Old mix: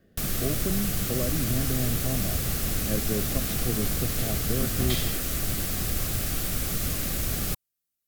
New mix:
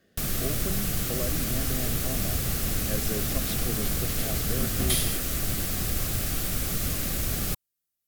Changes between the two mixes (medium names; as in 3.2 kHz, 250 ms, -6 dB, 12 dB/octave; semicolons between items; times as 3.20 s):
speech: add tilt EQ +2.5 dB/octave; second sound: remove boxcar filter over 4 samples